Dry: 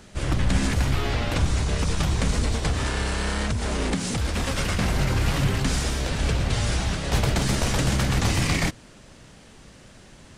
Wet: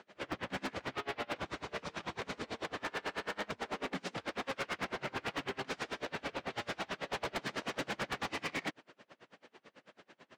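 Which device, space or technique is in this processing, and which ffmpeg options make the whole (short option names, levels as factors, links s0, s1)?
helicopter radio: -af "highpass=370,lowpass=2900,aeval=exprs='val(0)*pow(10,-31*(0.5-0.5*cos(2*PI*9.1*n/s))/20)':c=same,asoftclip=type=hard:threshold=0.0266"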